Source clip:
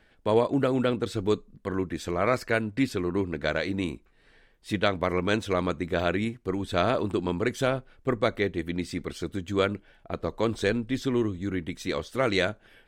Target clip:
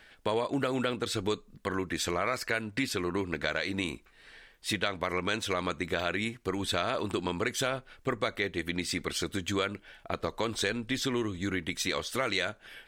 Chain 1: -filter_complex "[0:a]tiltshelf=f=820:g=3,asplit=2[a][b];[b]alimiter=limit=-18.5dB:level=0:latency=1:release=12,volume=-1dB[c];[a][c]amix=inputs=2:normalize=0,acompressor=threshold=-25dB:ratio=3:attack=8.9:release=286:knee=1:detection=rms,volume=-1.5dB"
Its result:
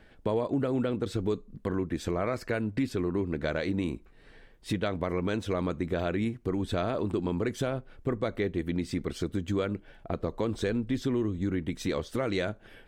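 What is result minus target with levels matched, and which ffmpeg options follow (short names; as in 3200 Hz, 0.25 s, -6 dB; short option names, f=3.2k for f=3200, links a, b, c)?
1000 Hz band -4.0 dB
-filter_complex "[0:a]tiltshelf=f=820:g=-6,asplit=2[a][b];[b]alimiter=limit=-18.5dB:level=0:latency=1:release=12,volume=-1dB[c];[a][c]amix=inputs=2:normalize=0,acompressor=threshold=-25dB:ratio=3:attack=8.9:release=286:knee=1:detection=rms,volume=-1.5dB"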